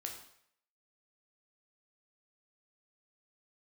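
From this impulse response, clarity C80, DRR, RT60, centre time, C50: 9.5 dB, 1.5 dB, 0.65 s, 26 ms, 6.5 dB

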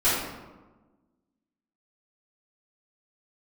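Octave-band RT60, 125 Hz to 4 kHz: 1.4, 1.7, 1.3, 1.2, 0.85, 0.65 s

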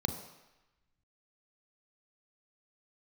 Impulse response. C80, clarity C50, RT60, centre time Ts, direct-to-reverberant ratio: 10.0 dB, 8.5 dB, 1.0 s, 21 ms, 6.0 dB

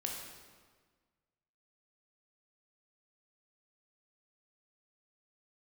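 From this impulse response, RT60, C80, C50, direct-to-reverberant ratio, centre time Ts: 1.5 s, 4.0 dB, 2.5 dB, -0.5 dB, 62 ms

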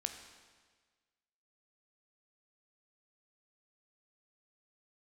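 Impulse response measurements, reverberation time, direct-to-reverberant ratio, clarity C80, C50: 1.5 s, 5.5 dB, 9.0 dB, 8.0 dB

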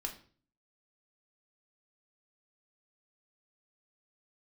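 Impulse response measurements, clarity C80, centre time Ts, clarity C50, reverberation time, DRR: 15.5 dB, 14 ms, 11.5 dB, 0.45 s, 2.5 dB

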